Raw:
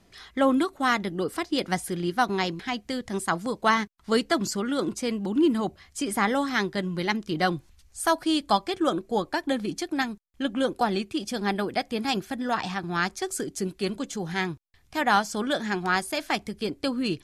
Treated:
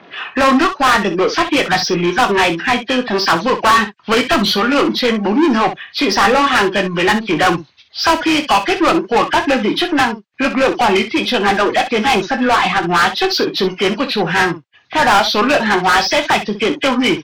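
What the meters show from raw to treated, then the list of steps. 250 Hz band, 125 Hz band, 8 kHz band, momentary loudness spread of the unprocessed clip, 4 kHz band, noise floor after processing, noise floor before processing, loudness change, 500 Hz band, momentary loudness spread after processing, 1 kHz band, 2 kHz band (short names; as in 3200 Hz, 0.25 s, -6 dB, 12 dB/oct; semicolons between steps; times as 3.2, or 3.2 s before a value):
+10.0 dB, +9.0 dB, +9.0 dB, 7 LU, +15.0 dB, -45 dBFS, -60 dBFS, +13.0 dB, +12.5 dB, 5 LU, +13.5 dB, +14.5 dB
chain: nonlinear frequency compression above 1500 Hz 1.5:1; low-pass opened by the level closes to 2600 Hz, open at -18.5 dBFS; reverb removal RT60 0.58 s; HPF 120 Hz 24 dB/oct; dynamic EQ 1000 Hz, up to +5 dB, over -37 dBFS, Q 1.5; overdrive pedal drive 31 dB, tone 5000 Hz, clips at -5 dBFS; early reflections 24 ms -10 dB, 63 ms -11.5 dB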